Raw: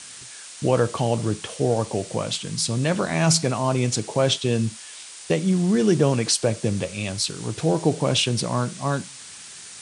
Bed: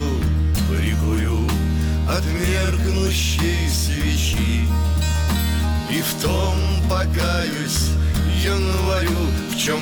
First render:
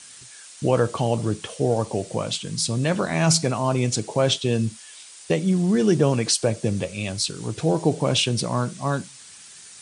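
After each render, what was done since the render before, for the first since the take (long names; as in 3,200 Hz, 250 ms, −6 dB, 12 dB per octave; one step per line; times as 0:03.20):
broadband denoise 6 dB, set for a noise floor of −41 dBFS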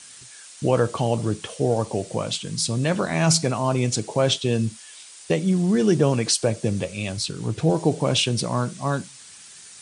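0:07.17–0:07.70: bass and treble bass +4 dB, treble −4 dB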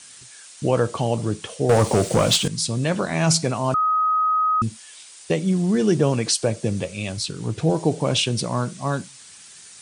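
0:01.69–0:02.48: leveller curve on the samples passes 3
0:03.74–0:04.62: beep over 1,260 Hz −16.5 dBFS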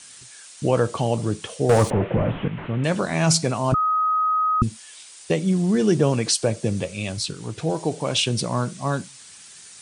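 0:01.90–0:02.84: linear delta modulator 16 kbit/s, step −34.5 dBFS
0:03.72–0:04.63: spectral tilt −3 dB per octave
0:07.34–0:08.26: low-shelf EQ 460 Hz −6.5 dB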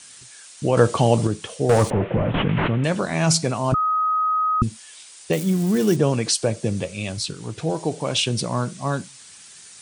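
0:00.77–0:01.27: clip gain +5.5 dB
0:02.34–0:02.88: envelope flattener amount 100%
0:05.33–0:05.96: spike at every zero crossing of −22.5 dBFS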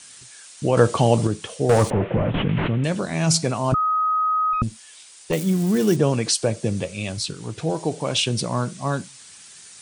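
0:02.30–0:03.34: parametric band 1,100 Hz −5 dB 2.2 octaves
0:04.53–0:05.33: tube saturation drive 12 dB, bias 0.5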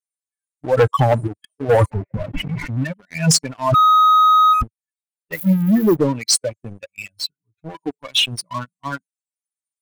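spectral dynamics exaggerated over time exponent 3
leveller curve on the samples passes 3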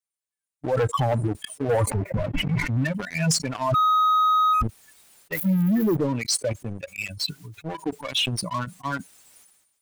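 brickwall limiter −17 dBFS, peak gain reduction 10 dB
level that may fall only so fast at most 57 dB per second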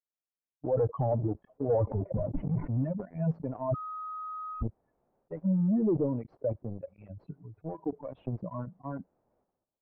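transistor ladder low-pass 850 Hz, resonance 25%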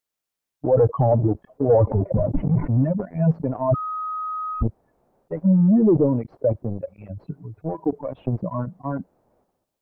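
level +10.5 dB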